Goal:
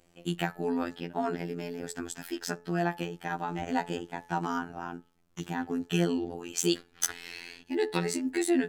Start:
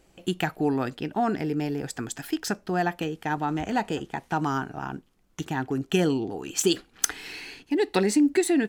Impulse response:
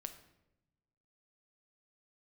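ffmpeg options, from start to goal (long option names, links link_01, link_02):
-af "bandreject=frequency=215.6:width_type=h:width=4,bandreject=frequency=431.2:width_type=h:width=4,bandreject=frequency=646.8:width_type=h:width=4,bandreject=frequency=862.4:width_type=h:width=4,bandreject=frequency=1078:width_type=h:width=4,bandreject=frequency=1293.6:width_type=h:width=4,bandreject=frequency=1509.2:width_type=h:width=4,bandreject=frequency=1724.8:width_type=h:width=4,bandreject=frequency=1940.4:width_type=h:width=4,afftfilt=real='hypot(re,im)*cos(PI*b)':imag='0':win_size=2048:overlap=0.75,volume=-1dB"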